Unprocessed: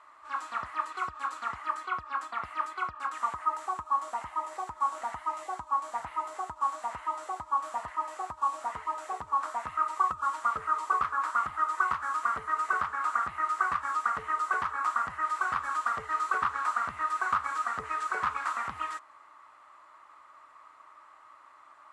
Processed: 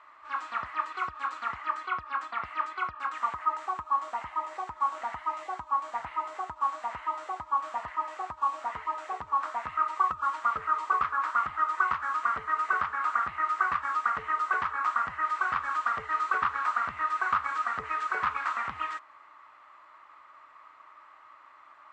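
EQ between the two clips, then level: air absorption 130 m; bell 2300 Hz +4.5 dB 1.3 oct; high shelf 5000 Hz +5.5 dB; 0.0 dB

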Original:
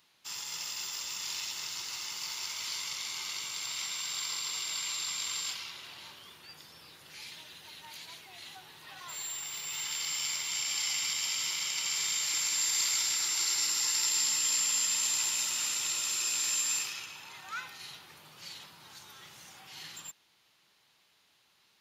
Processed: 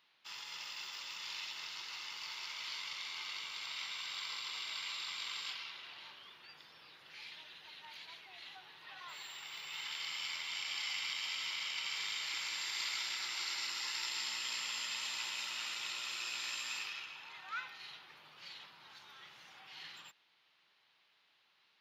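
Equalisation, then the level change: air absorption 330 m; tilt +3.5 dB/oct; -2.0 dB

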